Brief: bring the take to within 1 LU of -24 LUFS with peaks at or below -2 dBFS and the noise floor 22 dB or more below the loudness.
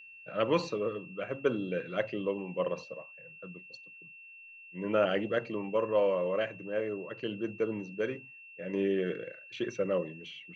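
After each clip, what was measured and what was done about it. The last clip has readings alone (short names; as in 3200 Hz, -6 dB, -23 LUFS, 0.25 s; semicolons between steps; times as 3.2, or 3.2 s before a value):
steady tone 2700 Hz; tone level -49 dBFS; loudness -33.0 LUFS; peak -15.0 dBFS; loudness target -24.0 LUFS
-> notch 2700 Hz, Q 30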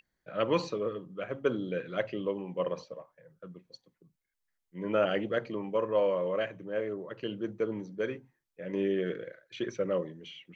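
steady tone none; loudness -33.0 LUFS; peak -15.0 dBFS; loudness target -24.0 LUFS
-> gain +9 dB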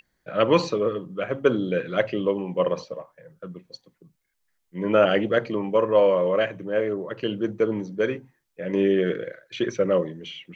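loudness -24.0 LUFS; peak -6.0 dBFS; noise floor -74 dBFS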